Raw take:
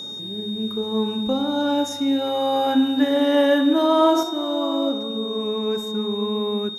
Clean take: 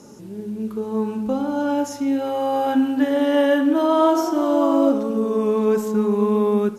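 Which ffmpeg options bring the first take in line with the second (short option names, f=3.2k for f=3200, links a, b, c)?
-af "bandreject=f=3.7k:w=30,asetnsamples=n=441:p=0,asendcmd='4.23 volume volume 6dB',volume=0dB"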